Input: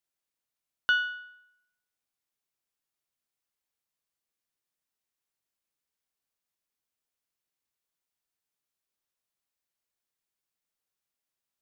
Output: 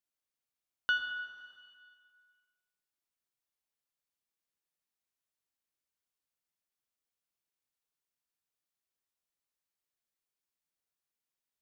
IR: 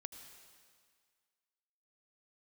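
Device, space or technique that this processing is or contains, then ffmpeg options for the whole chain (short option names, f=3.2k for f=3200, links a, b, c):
stairwell: -filter_complex "[1:a]atrim=start_sample=2205[a];[0:a][a]afir=irnorm=-1:irlink=0,asettb=1/sr,asplit=3[b][c][d];[b]atrim=end=0.984[e];[c]atrim=start=0.98:end=1.38,asetpts=PTS-STARTPTS,afade=t=in:d=0.004:c=qsin,afade=t=out:st=0.396:d=0.004:c=qsin,highshelf=f=4.4k:g=-5.5[f];[d]atrim=start=1.376[g];[e][f]acrossfade=d=0.004:c1=hsin:c2=qsin[h];[h][g]acrossfade=d=0.004:c1=qsin:c2=hsin"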